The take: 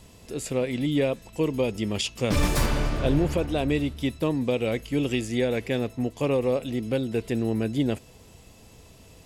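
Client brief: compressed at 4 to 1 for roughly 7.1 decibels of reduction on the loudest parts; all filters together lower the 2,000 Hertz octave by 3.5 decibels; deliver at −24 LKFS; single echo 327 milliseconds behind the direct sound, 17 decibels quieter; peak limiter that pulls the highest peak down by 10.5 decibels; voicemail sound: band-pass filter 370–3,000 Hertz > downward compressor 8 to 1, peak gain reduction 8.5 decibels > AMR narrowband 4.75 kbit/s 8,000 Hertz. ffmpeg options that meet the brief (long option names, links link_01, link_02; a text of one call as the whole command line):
ffmpeg -i in.wav -af "equalizer=frequency=2000:width_type=o:gain=-3,acompressor=threshold=-26dB:ratio=4,alimiter=level_in=2dB:limit=-24dB:level=0:latency=1,volume=-2dB,highpass=370,lowpass=3000,aecho=1:1:327:0.141,acompressor=threshold=-40dB:ratio=8,volume=22.5dB" -ar 8000 -c:a libopencore_amrnb -b:a 4750 out.amr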